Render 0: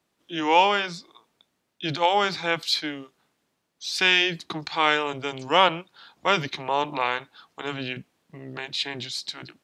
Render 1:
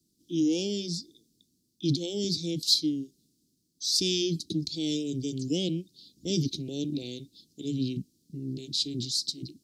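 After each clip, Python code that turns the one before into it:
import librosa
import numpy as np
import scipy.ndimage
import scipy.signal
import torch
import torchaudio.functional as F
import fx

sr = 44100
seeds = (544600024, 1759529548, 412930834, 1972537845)

y = scipy.signal.sosfilt(scipy.signal.ellip(3, 1.0, 70, [310.0, 4700.0], 'bandstop', fs=sr, output='sos'), x)
y = y * librosa.db_to_amplitude(6.0)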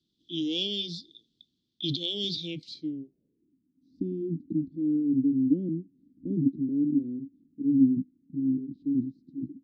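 y = fx.filter_sweep_lowpass(x, sr, from_hz=3400.0, to_hz=270.0, start_s=2.41, end_s=3.57, q=7.1)
y = y * librosa.db_to_amplitude(-5.5)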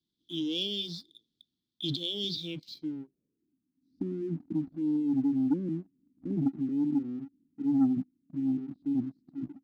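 y = fx.leveller(x, sr, passes=1)
y = y * librosa.db_to_amplitude(-6.0)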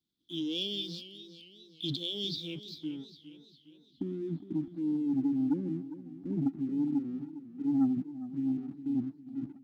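y = fx.echo_warbled(x, sr, ms=407, feedback_pct=49, rate_hz=2.8, cents=100, wet_db=-14)
y = y * librosa.db_to_amplitude(-2.0)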